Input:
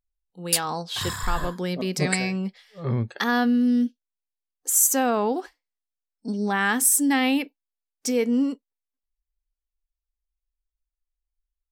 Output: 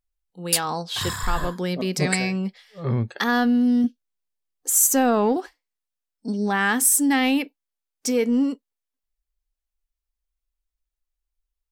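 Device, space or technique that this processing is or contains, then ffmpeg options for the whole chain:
parallel distortion: -filter_complex "[0:a]asettb=1/sr,asplit=3[link_01][link_02][link_03];[link_01]atrim=end=3.844[link_04];[link_02]atrim=start=3.84:end=5.37,asetpts=PTS-STARTPTS,afade=type=in:duration=0.004:curve=qsin,afade=type=out:start_time=1.526:duration=0.004:curve=qsin,lowshelf=frequency=370:gain=5.5[link_05];[link_03]atrim=start=5.366[link_06];[link_04][link_05]acrossfade=duration=0.004:curve1=hsin:curve2=qsin[link_07];[link_07][link_06]acrossfade=duration=0.004:curve1=qsin:curve2=hsin,asplit=2[link_08][link_09];[link_09]asoftclip=type=hard:threshold=-20.5dB,volume=-12.5dB[link_10];[link_08][link_10]amix=inputs=2:normalize=0"

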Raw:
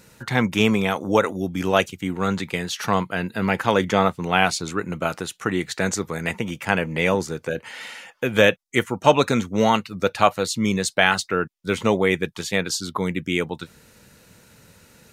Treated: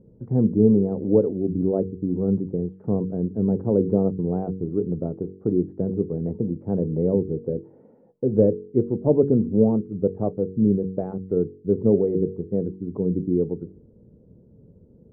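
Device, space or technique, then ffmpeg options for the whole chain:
under water: -af "lowpass=frequency=440:width=0.5412,lowpass=frequency=440:width=1.3066,equalizer=frequency=420:width_type=o:width=0.24:gain=4,bandreject=frequency=47.06:width_type=h:width=4,bandreject=frequency=94.12:width_type=h:width=4,bandreject=frequency=141.18:width_type=h:width=4,bandreject=frequency=188.24:width_type=h:width=4,bandreject=frequency=235.3:width_type=h:width=4,bandreject=frequency=282.36:width_type=h:width=4,bandreject=frequency=329.42:width_type=h:width=4,bandreject=frequency=376.48:width_type=h:width=4,bandreject=frequency=423.54:width_type=h:width=4,bandreject=frequency=470.6:width_type=h:width=4,volume=3.5dB"

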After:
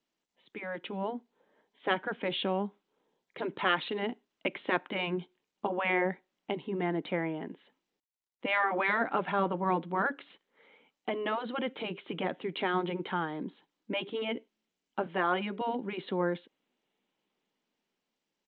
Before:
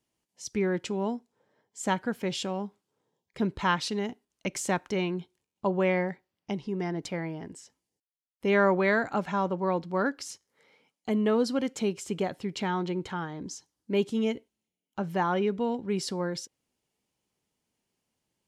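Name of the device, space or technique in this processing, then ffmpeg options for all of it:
Bluetooth headset: -filter_complex "[0:a]asettb=1/sr,asplit=3[link_01][link_02][link_03];[link_01]atrim=end=15.064[link_04];[link_02]atrim=start=15.06:end=15.61,asetpts=PTS-STARTPTS,afade=type=in:duration=0.004:curve=qsin,afade=type=out:start_time=0.546:duration=0.004:curve=qsin,highpass=280[link_05];[link_03]atrim=start=15.606[link_06];[link_04][link_05]acrossfade=duration=0.004:curve1=hsin:curve2=qsin[link_07];[link_07][link_06]acrossfade=duration=0.004:curve1=qsin:curve2=hsin,afftfilt=real='re*lt(hypot(re,im),0.282)':imag='im*lt(hypot(re,im),0.282)':win_size=1024:overlap=0.75,highpass=frequency=190:width=0.5412,highpass=frequency=190:width=1.3066,dynaudnorm=framelen=220:gausssize=11:maxgain=6dB,aresample=8000,aresample=44100,volume=-3.5dB" -ar 16000 -c:a sbc -b:a 64k

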